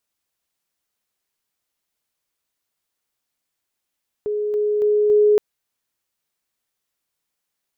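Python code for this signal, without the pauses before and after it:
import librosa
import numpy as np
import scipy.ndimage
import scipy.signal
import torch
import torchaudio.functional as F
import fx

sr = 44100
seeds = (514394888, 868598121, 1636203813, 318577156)

y = fx.level_ladder(sr, hz=419.0, from_db=-20.0, step_db=3.0, steps=4, dwell_s=0.28, gap_s=0.0)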